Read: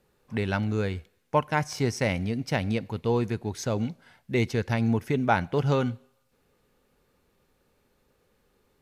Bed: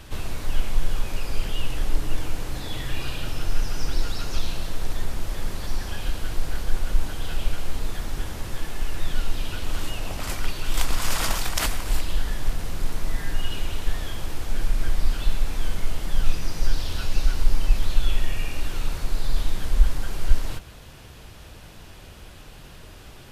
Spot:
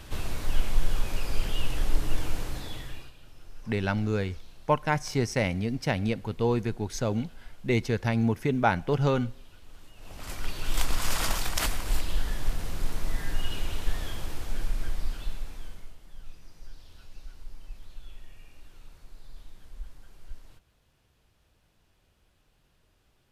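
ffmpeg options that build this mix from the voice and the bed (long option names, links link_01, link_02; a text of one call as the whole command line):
ffmpeg -i stem1.wav -i stem2.wav -filter_complex "[0:a]adelay=3350,volume=-0.5dB[link_01];[1:a]volume=17.5dB,afade=type=out:start_time=2.37:duration=0.75:silence=0.0891251,afade=type=in:start_time=9.95:duration=0.72:silence=0.105925,afade=type=out:start_time=14.08:duration=1.89:silence=0.1[link_02];[link_01][link_02]amix=inputs=2:normalize=0" out.wav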